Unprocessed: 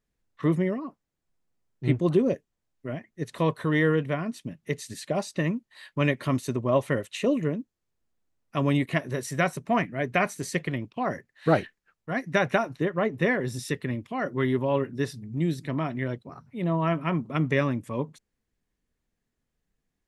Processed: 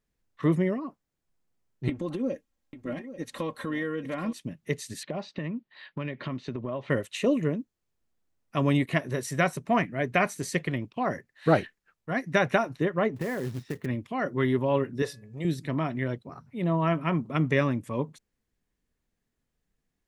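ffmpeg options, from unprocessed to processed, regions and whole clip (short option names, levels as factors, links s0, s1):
-filter_complex "[0:a]asettb=1/sr,asplit=3[s0][s1][s2];[s0]atrim=end=1.894[s3];[s1]atrim=start=1.89:end=4.33,asetpts=PTS-STARTPTS,afade=t=in:d=0.004:c=qsin,afade=t=out:st=2.436:d=0.004:c=qsin,acompressor=threshold=0.0398:ratio=6:attack=3.2:release=140:knee=1:detection=peak,aecho=1:1:3.7:0.64,atrim=end_sample=107604,aecho=1:1:840:0.224,atrim=end_sample=107604[s4];[s2]atrim=start=4.326[s5];[s3][s4]acrossfade=d=0.004:c1=hsin:c2=qsin[s6];[s6][s5]acrossfade=d=0.004:c1=qsin:c2=hsin,asettb=1/sr,asplit=3[s7][s8][s9];[s7]atrim=end=5.034[s10];[s8]atrim=start=5.03:end=6.9,asetpts=PTS-STARTPTS,afade=t=in:d=0.004:c=qsin,afade=t=out:st=1.866:d=0.004:c=qsin,lowpass=f=4100:w=0.5412,lowpass=f=4100:w=1.3066,lowshelf=f=110:t=q:w=1.5:g=-7,acompressor=threshold=0.0398:ratio=12:attack=3.2:release=140:knee=1:detection=peak[s11];[s9]atrim=start=6.896[s12];[s10][s11]acrossfade=d=0.004:c1=hsin:c2=qsin[s13];[s13][s12]acrossfade=d=0.004:c1=qsin:c2=hsin,asettb=1/sr,asplit=3[s14][s15][s16];[s14]atrim=end=13.164[s17];[s15]atrim=start=13.16:end=13.86,asetpts=PTS-STARTPTS,afade=t=in:d=0.004:c=qsin,afade=t=out:st=0.696:d=0.004:c=qsin,lowpass=1600,acompressor=threshold=0.0501:ratio=10:attack=3.2:release=140:knee=1:detection=peak,acrusher=bits=4:mode=log:mix=0:aa=0.000001[s18];[s16]atrim=start=13.856[s19];[s17][s18]acrossfade=d=0.004:c1=hsin:c2=qsin[s20];[s20][s19]acrossfade=d=0.004:c1=qsin:c2=hsin,asettb=1/sr,asplit=3[s21][s22][s23];[s21]atrim=end=15.024[s24];[s22]atrim=start=15.02:end=15.45,asetpts=PTS-STARTPTS,afade=t=in:d=0.004:c=qsin,afade=t=out:st=0.426:d=0.004:c=qsin,lowshelf=f=370:t=q:w=3:g=-7.5,bandreject=f=1500:w=14,bandreject=f=284.1:t=h:w=4,bandreject=f=568.2:t=h:w=4,bandreject=f=852.3:t=h:w=4,bandreject=f=1136.4:t=h:w=4,bandreject=f=1420.5:t=h:w=4,bandreject=f=1704.6:t=h:w=4,bandreject=f=1988.7:t=h:w=4,bandreject=f=2272.8:t=h:w=4,bandreject=f=2556.9:t=h:w=4[s25];[s23]atrim=start=15.446[s26];[s24][s25]acrossfade=d=0.004:c1=hsin:c2=qsin[s27];[s27][s26]acrossfade=d=0.004:c1=qsin:c2=hsin"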